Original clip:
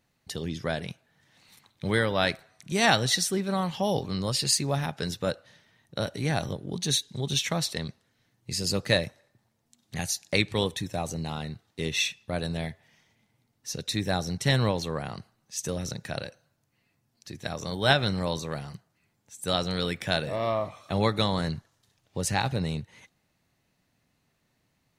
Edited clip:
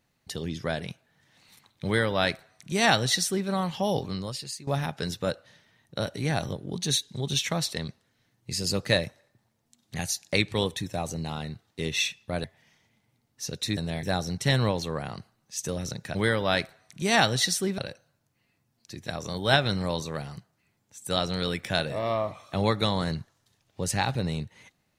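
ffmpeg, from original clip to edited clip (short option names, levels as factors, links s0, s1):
-filter_complex "[0:a]asplit=7[s0][s1][s2][s3][s4][s5][s6];[s0]atrim=end=4.67,asetpts=PTS-STARTPTS,afade=t=out:st=4.07:d=0.6:c=qua:silence=0.16788[s7];[s1]atrim=start=4.67:end=12.442,asetpts=PTS-STARTPTS,afade=t=in:d=0.004:c=hsin:silence=0.16788[s8];[s2]atrim=start=12.698:end=14.032[s9];[s3]atrim=start=12.438:end=12.702[s10];[s4]atrim=start=14.028:end=16.152[s11];[s5]atrim=start=1.848:end=3.482[s12];[s6]atrim=start=16.148[s13];[s7][s8]concat=n=2:v=0:a=1[s14];[s14][s9]acrossfade=d=0.004:c1=hsin:c2=hsin[s15];[s15][s10]acrossfade=d=0.004:c1=hsin:c2=hsin[s16];[s16][s11]acrossfade=d=0.004:c1=hsin:c2=hsin[s17];[s17][s12]acrossfade=d=0.004:c1=hsin:c2=hsin[s18];[s18][s13]acrossfade=d=0.004:c1=hsin:c2=hsin"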